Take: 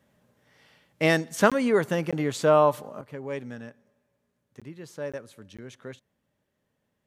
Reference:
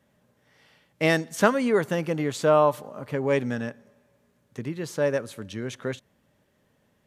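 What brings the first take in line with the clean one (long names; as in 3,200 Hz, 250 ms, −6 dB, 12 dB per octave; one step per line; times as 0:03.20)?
repair the gap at 0:01.50/0:02.11/0:04.60/0:05.12/0:05.57, 16 ms
level 0 dB, from 0:03.01 +10 dB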